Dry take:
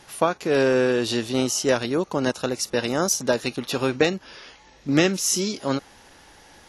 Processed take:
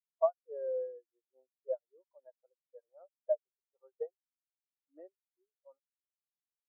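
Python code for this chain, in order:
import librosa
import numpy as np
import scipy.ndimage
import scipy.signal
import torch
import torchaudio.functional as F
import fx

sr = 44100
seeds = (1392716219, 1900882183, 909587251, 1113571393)

y = fx.ladder_bandpass(x, sr, hz=1000.0, resonance_pct=20)
y = fx.spectral_expand(y, sr, expansion=4.0)
y = F.gain(torch.from_numpy(y), 2.0).numpy()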